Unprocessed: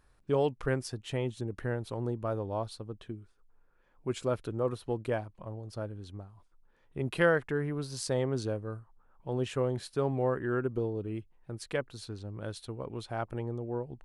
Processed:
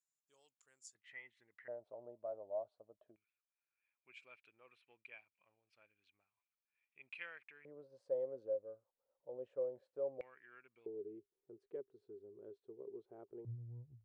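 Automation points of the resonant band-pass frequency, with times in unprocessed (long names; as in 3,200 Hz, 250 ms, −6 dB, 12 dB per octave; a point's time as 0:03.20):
resonant band-pass, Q 14
7,100 Hz
from 0:00.95 2,000 Hz
from 0:01.68 620 Hz
from 0:03.16 2,400 Hz
from 0:07.65 540 Hz
from 0:10.21 2,300 Hz
from 0:10.86 400 Hz
from 0:13.45 110 Hz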